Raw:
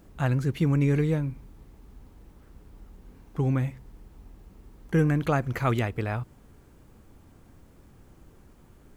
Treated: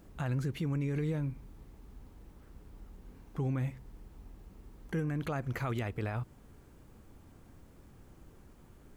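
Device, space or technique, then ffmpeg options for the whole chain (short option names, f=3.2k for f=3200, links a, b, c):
stacked limiters: -af "alimiter=limit=-18.5dB:level=0:latency=1:release=394,alimiter=limit=-24dB:level=0:latency=1:release=35,volume=-2.5dB"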